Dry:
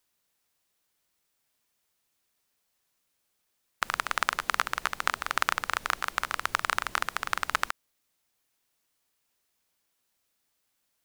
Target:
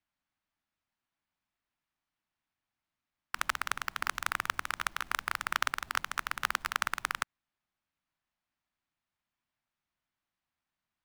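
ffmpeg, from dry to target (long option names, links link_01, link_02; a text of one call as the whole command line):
ffmpeg -i in.wav -af "areverse,equalizer=frequency=460:width=2.2:gain=-14,adynamicsmooth=sensitivity=2.5:basefreq=2700,acrusher=bits=2:mode=log:mix=0:aa=0.000001,volume=-3.5dB" out.wav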